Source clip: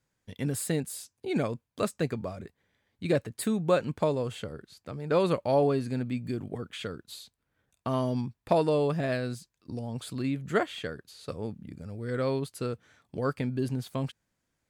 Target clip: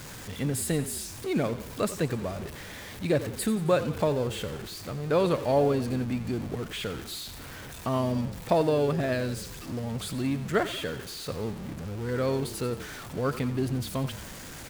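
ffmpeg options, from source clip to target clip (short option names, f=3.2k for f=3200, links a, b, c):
-filter_complex "[0:a]aeval=exprs='val(0)+0.5*0.0158*sgn(val(0))':c=same,asplit=7[a][b][c][d][e][f][g];[b]adelay=89,afreqshift=-31,volume=-13.5dB[h];[c]adelay=178,afreqshift=-62,volume=-18.2dB[i];[d]adelay=267,afreqshift=-93,volume=-23dB[j];[e]adelay=356,afreqshift=-124,volume=-27.7dB[k];[f]adelay=445,afreqshift=-155,volume=-32.4dB[l];[g]adelay=534,afreqshift=-186,volume=-37.2dB[m];[a][h][i][j][k][l][m]amix=inputs=7:normalize=0"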